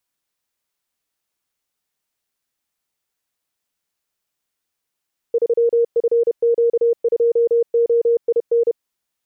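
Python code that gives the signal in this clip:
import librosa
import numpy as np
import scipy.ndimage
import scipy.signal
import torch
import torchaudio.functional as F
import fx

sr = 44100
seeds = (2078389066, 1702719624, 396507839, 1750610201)

y = fx.morse(sr, text='3FQ2OIN', wpm=31, hz=468.0, level_db=-12.0)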